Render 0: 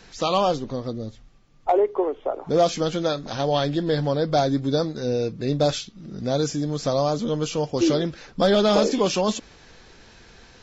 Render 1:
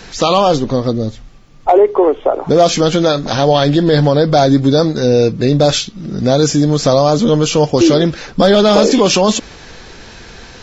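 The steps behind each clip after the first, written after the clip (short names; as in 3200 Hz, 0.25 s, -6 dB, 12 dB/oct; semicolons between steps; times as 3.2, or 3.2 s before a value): maximiser +15 dB; gain -1 dB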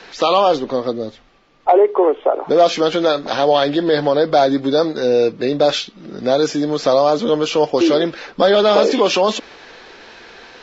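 three-band isolator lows -19 dB, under 280 Hz, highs -19 dB, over 4800 Hz; gain -1.5 dB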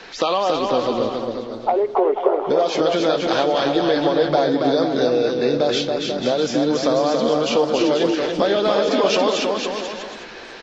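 compressor, threshold -16 dBFS, peak gain reduction 9 dB; bouncing-ball echo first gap 0.28 s, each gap 0.75×, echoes 5; warbling echo 0.293 s, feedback 63%, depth 203 cents, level -20 dB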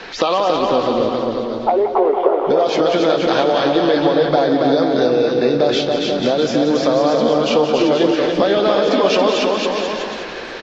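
in parallel at +2 dB: compressor, threshold -25 dBFS, peak gain reduction 13.5 dB; on the sum: air absorption 73 m; feedback echo 0.179 s, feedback 56%, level -10 dB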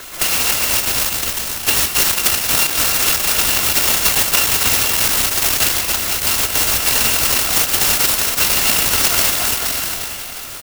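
FFT order left unsorted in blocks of 256 samples; bit-crush 6-bit; clock jitter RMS 0.047 ms; gain +1 dB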